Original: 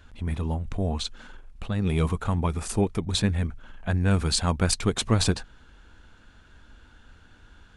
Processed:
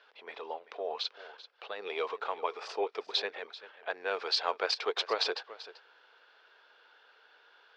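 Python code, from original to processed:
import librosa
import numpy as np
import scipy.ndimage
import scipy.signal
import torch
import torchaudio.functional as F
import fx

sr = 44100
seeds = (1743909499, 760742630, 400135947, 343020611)

y = scipy.signal.sosfilt(scipy.signal.cheby1(4, 1.0, [430.0, 5100.0], 'bandpass', fs=sr, output='sos'), x)
y = y + 10.0 ** (-16.5 / 20.0) * np.pad(y, (int(388 * sr / 1000.0), 0))[:len(y)]
y = F.gain(torch.from_numpy(y), -1.5).numpy()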